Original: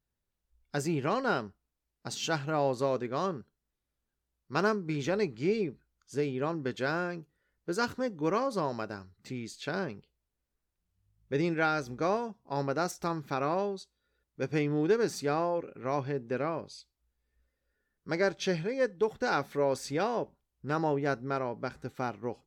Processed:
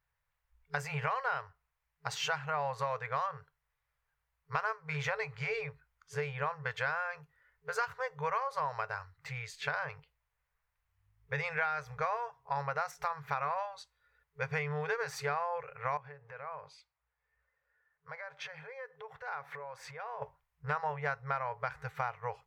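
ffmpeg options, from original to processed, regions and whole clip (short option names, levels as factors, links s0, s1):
-filter_complex "[0:a]asettb=1/sr,asplit=3[s0][s1][s2];[s0]atrim=end=15.974[s3];[s1]atrim=start=15.97:end=20.22,asetpts=PTS-STARTPTS,afade=t=in:d=0.004:c=qsin,afade=t=out:st=4.246:d=0.004:c=qsin,highshelf=f=2800:g=-10.5,acompressor=threshold=0.01:ratio=16:attack=3.2:release=140:knee=1:detection=peak,highpass=f=210:p=1[s4];[s2]atrim=start=20.216[s5];[s3][s4]acrossfade=d=0.004:c1=hsin:c2=qsin[s6];[s6][s5]acrossfade=d=0.004:c1=qsin:c2=hsin,afftfilt=real='re*(1-between(b*sr/4096,160,420))':imag='im*(1-between(b*sr/4096,160,420))':win_size=4096:overlap=0.75,equalizer=f=250:t=o:w=1:g=4,equalizer=f=500:t=o:w=1:g=-4,equalizer=f=1000:t=o:w=1:g=9,equalizer=f=2000:t=o:w=1:g=10,equalizer=f=4000:t=o:w=1:g=-3,equalizer=f=8000:t=o:w=1:g=-4,acompressor=threshold=0.0282:ratio=5"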